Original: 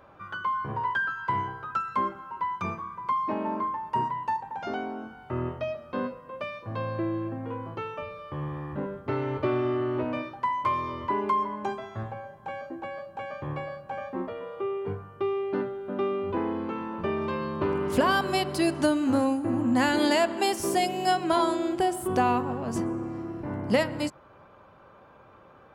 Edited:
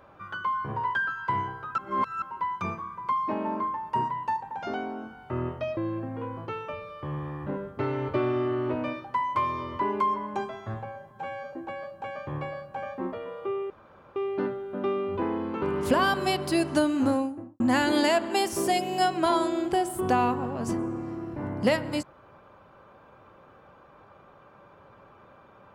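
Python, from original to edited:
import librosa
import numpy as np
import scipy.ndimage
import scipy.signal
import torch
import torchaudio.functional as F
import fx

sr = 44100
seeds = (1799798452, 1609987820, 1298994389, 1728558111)

y = fx.studio_fade_out(x, sr, start_s=19.1, length_s=0.57)
y = fx.edit(y, sr, fx.reverse_span(start_s=1.78, length_s=0.44),
    fx.cut(start_s=5.77, length_s=1.29),
    fx.stretch_span(start_s=12.4, length_s=0.28, factor=1.5),
    fx.room_tone_fill(start_s=14.85, length_s=0.46),
    fx.cut(start_s=16.77, length_s=0.92), tone=tone)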